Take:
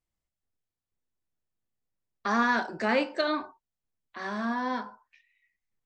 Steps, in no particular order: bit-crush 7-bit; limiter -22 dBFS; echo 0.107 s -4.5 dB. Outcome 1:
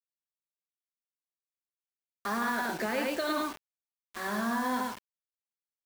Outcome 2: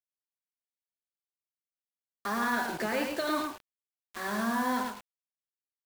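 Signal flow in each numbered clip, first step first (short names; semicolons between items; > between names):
echo > limiter > bit-crush; limiter > bit-crush > echo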